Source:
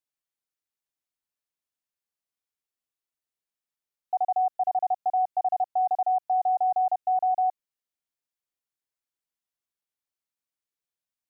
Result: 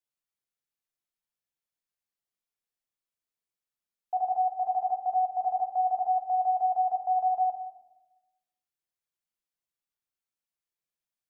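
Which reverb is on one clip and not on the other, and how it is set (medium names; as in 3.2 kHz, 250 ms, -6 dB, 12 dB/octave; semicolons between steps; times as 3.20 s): simulated room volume 410 m³, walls mixed, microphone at 0.84 m; trim -4 dB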